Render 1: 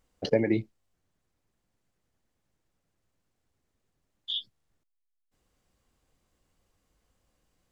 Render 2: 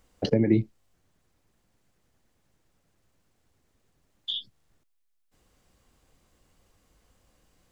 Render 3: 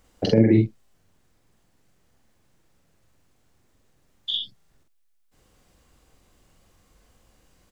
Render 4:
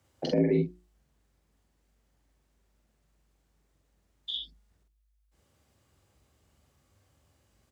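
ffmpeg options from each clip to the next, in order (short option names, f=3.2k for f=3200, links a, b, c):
-filter_complex "[0:a]acrossover=split=320[a][b];[b]acompressor=threshold=-37dB:ratio=8[c];[a][c]amix=inputs=2:normalize=0,volume=8dB"
-filter_complex "[0:a]asplit=2[a][b];[b]adelay=45,volume=-2.5dB[c];[a][c]amix=inputs=2:normalize=0,volume=3dB"
-af "afreqshift=51,bandreject=f=60:t=h:w=6,bandreject=f=120:t=h:w=6,bandreject=f=180:t=h:w=6,bandreject=f=240:t=h:w=6,bandreject=f=300:t=h:w=6,bandreject=f=360:t=h:w=6,volume=-8dB"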